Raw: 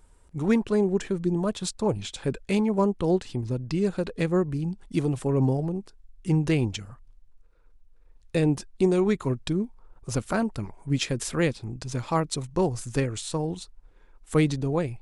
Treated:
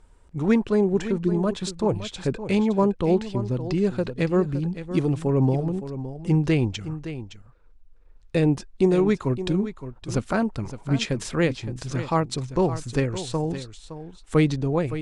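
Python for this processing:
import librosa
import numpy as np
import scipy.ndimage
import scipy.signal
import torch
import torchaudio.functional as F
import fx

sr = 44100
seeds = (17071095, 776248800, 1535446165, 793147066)

p1 = fx.air_absorb(x, sr, metres=59.0)
p2 = p1 + fx.echo_single(p1, sr, ms=565, db=-12.0, dry=0)
y = F.gain(torch.from_numpy(p2), 2.5).numpy()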